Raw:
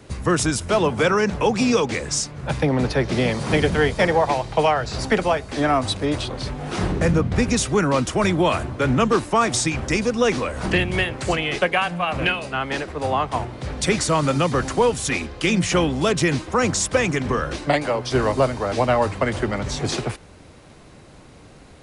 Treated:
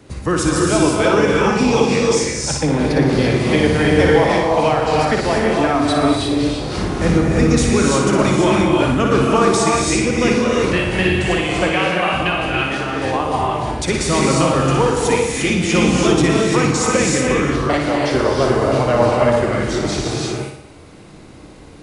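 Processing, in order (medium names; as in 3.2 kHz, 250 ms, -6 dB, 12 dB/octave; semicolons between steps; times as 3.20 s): peaking EQ 300 Hz +5 dB 0.47 oct; on a send: flutter echo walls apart 10.1 m, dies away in 0.61 s; on the sum: gated-style reverb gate 370 ms rising, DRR -1.5 dB; trim -1 dB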